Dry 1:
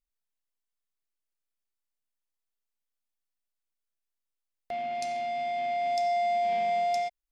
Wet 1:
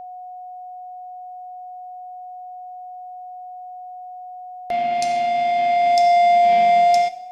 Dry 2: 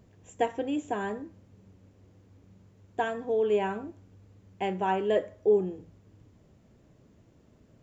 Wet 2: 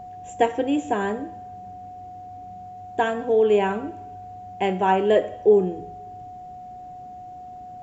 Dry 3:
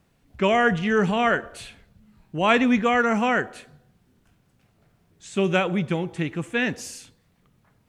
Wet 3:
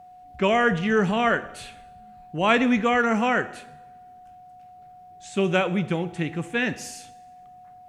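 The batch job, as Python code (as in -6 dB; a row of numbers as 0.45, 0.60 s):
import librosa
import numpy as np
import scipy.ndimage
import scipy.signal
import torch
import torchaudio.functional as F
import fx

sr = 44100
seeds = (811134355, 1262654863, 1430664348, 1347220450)

y = fx.rev_double_slope(x, sr, seeds[0], early_s=0.8, late_s=2.0, knee_db=-18, drr_db=14.0)
y = y + 10.0 ** (-44.0 / 20.0) * np.sin(2.0 * np.pi * 730.0 * np.arange(len(y)) / sr)
y = y * 10.0 ** (-6 / 20.0) / np.max(np.abs(y))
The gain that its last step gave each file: +11.0, +7.5, -0.5 dB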